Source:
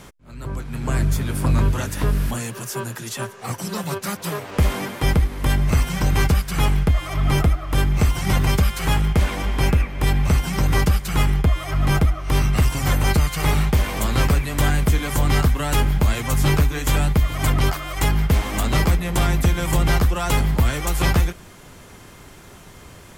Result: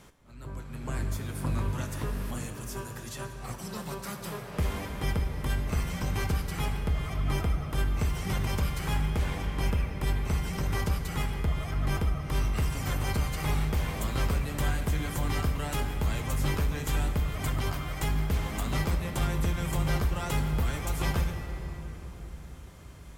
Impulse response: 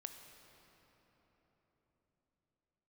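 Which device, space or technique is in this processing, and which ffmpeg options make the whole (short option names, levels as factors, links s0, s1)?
cathedral: -filter_complex "[1:a]atrim=start_sample=2205[s0];[0:a][s0]afir=irnorm=-1:irlink=0,volume=0.501"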